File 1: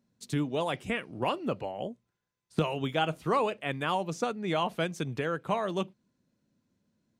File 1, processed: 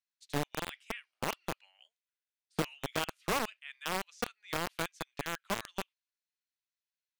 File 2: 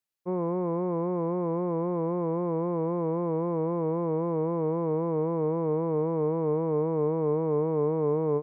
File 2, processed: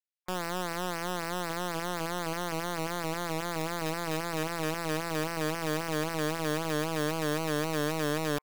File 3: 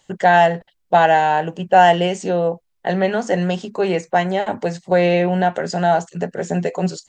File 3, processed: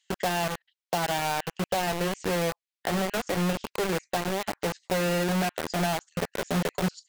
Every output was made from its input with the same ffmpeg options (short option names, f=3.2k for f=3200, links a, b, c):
-filter_complex "[0:a]aemphasis=mode=reproduction:type=50kf,acrossover=split=170[a][b];[b]acompressor=threshold=-22dB:ratio=6[c];[a][c]amix=inputs=2:normalize=0,acrossover=split=1800[d][e];[d]acrusher=bits=3:mix=0:aa=0.000001[f];[f][e]amix=inputs=2:normalize=0,volume=-5dB"